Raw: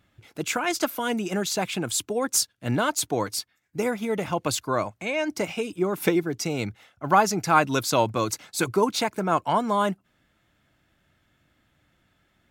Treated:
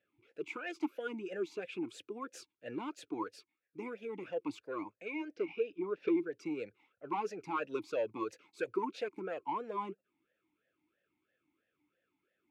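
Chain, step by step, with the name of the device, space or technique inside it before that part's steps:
0:05.34–0:06.15: low-pass filter 5,100 Hz 24 dB per octave
talk box (tube saturation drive 14 dB, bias 0.2; formant filter swept between two vowels e-u 3 Hz)
level −1 dB

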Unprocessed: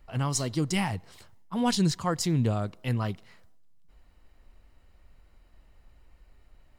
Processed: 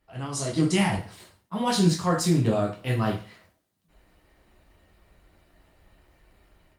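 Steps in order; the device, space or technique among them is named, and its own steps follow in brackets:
far-field microphone of a smart speaker (convolution reverb RT60 0.40 s, pre-delay 7 ms, DRR −2 dB; high-pass filter 110 Hz 6 dB per octave; automatic gain control gain up to 10.5 dB; level −7 dB; Opus 32 kbit/s 48,000 Hz)

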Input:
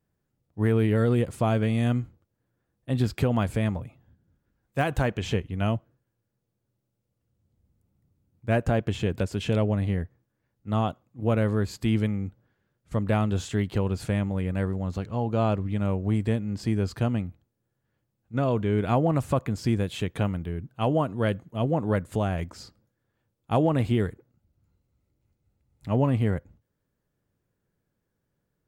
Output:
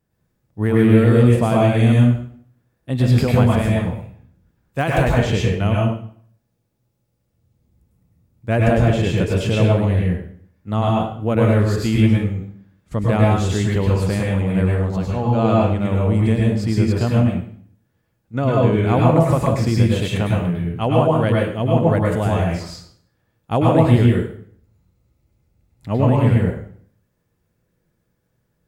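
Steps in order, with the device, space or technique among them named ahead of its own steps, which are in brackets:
bathroom (convolution reverb RT60 0.55 s, pre-delay 96 ms, DRR −3.5 dB)
level +4 dB

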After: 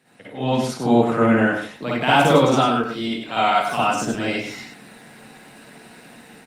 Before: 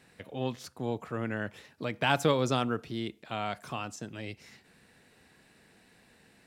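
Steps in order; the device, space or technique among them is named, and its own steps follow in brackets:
0:02.60–0:03.79: low-shelf EQ 440 Hz −6 dB
single-tap delay 100 ms −7 dB
far-field microphone of a smart speaker (convolution reverb RT60 0.35 s, pre-delay 50 ms, DRR −7 dB; high-pass filter 130 Hz 24 dB per octave; automatic gain control gain up to 12 dB; level −1 dB; Opus 32 kbit/s 48,000 Hz)

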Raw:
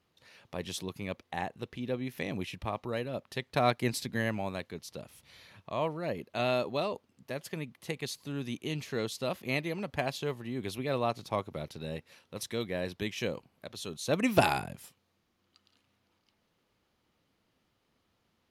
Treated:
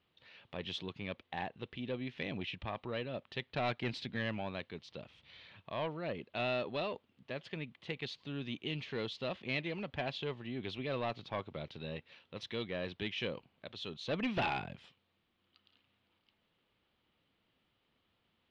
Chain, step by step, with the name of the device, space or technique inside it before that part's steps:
overdriven synthesiser ladder filter (soft clipping −25.5 dBFS, distortion −11 dB; transistor ladder low-pass 3,900 Hz, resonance 45%)
level +5 dB

